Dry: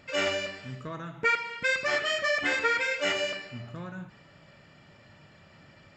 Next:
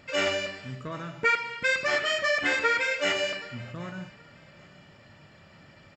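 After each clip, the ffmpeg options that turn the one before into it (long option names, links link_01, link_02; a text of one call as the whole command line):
ffmpeg -i in.wav -af "aecho=1:1:775|1550:0.075|0.0217,volume=1.5dB" out.wav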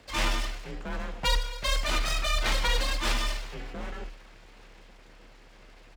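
ffmpeg -i in.wav -af "equalizer=frequency=320:width_type=o:width=0.37:gain=11.5,aeval=exprs='abs(val(0))':channel_layout=same,afreqshift=35" out.wav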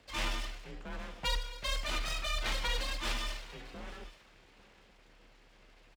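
ffmpeg -i in.wav -af "equalizer=frequency=3000:width=1.5:gain=2.5,aecho=1:1:843:0.0944,volume=-8dB" out.wav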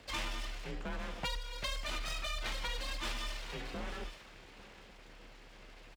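ffmpeg -i in.wav -af "acompressor=threshold=-42dB:ratio=5,volume=6dB" out.wav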